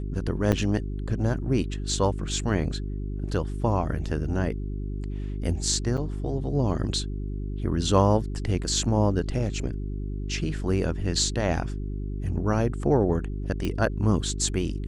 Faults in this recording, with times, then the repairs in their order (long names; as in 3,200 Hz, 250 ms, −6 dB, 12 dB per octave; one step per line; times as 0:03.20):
mains hum 50 Hz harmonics 8 −31 dBFS
0:00.52–0:00.53: drop-out 7.1 ms
0:05.97–0:05.98: drop-out 6.4 ms
0:13.65: click −16 dBFS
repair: click removal
hum removal 50 Hz, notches 8
repair the gap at 0:00.52, 7.1 ms
repair the gap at 0:05.97, 6.4 ms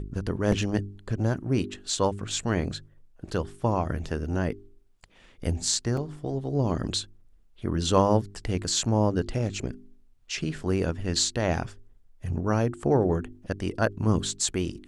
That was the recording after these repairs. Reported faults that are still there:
0:13.65: click